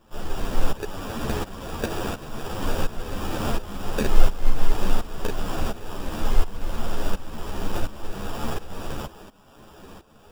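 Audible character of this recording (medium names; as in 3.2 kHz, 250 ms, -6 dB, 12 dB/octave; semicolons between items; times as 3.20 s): aliases and images of a low sample rate 2.1 kHz, jitter 0%; tremolo saw up 1.4 Hz, depth 85%; a shimmering, thickened sound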